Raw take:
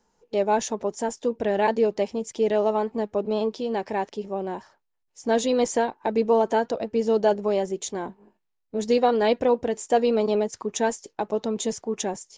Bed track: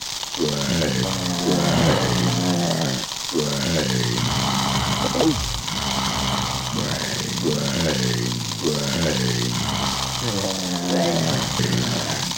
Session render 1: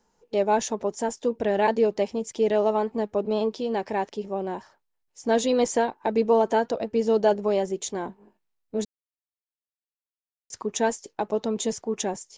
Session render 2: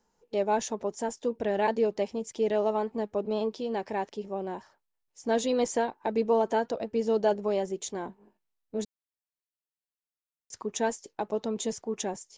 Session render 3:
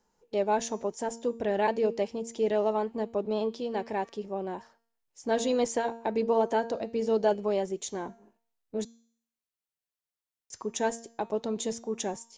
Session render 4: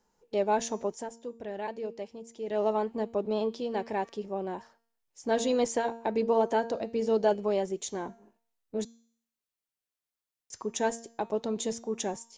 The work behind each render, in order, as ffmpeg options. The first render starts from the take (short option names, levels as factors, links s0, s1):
-filter_complex "[0:a]asplit=3[s0][s1][s2];[s0]atrim=end=8.85,asetpts=PTS-STARTPTS,afade=t=out:st=8.846:d=0.004:c=hsin[s3];[s1]atrim=start=8.85:end=10.5,asetpts=PTS-STARTPTS,volume=0[s4];[s2]atrim=start=10.5,asetpts=PTS-STARTPTS,afade=t=in:d=0.004:c=hsin[s5];[s3][s4][s5]concat=n=3:v=0:a=1"
-af "volume=0.596"
-af "bandreject=f=230.4:t=h:w=4,bandreject=f=460.8:t=h:w=4,bandreject=f=691.2:t=h:w=4,bandreject=f=921.6:t=h:w=4,bandreject=f=1152:t=h:w=4,bandreject=f=1382.4:t=h:w=4,bandreject=f=1612.8:t=h:w=4,bandreject=f=1843.2:t=h:w=4,bandreject=f=2073.6:t=h:w=4,bandreject=f=2304:t=h:w=4,bandreject=f=2534.4:t=h:w=4,bandreject=f=2764.8:t=h:w=4,bandreject=f=2995.2:t=h:w=4,bandreject=f=3225.6:t=h:w=4,bandreject=f=3456:t=h:w=4,bandreject=f=3686.4:t=h:w=4,bandreject=f=3916.8:t=h:w=4,bandreject=f=4147.2:t=h:w=4,bandreject=f=4377.6:t=h:w=4,bandreject=f=4608:t=h:w=4,bandreject=f=4838.4:t=h:w=4,bandreject=f=5068.8:t=h:w=4,bandreject=f=5299.2:t=h:w=4,bandreject=f=5529.6:t=h:w=4,bandreject=f=5760:t=h:w=4,bandreject=f=5990.4:t=h:w=4,bandreject=f=6220.8:t=h:w=4,bandreject=f=6451.2:t=h:w=4,bandreject=f=6681.6:t=h:w=4,bandreject=f=6912:t=h:w=4,bandreject=f=7142.4:t=h:w=4,bandreject=f=7372.8:t=h:w=4,bandreject=f=7603.2:t=h:w=4"
-filter_complex "[0:a]asplit=3[s0][s1][s2];[s0]atrim=end=1.1,asetpts=PTS-STARTPTS,afade=t=out:st=0.92:d=0.18:silence=0.334965[s3];[s1]atrim=start=1.1:end=2.46,asetpts=PTS-STARTPTS,volume=0.335[s4];[s2]atrim=start=2.46,asetpts=PTS-STARTPTS,afade=t=in:d=0.18:silence=0.334965[s5];[s3][s4][s5]concat=n=3:v=0:a=1"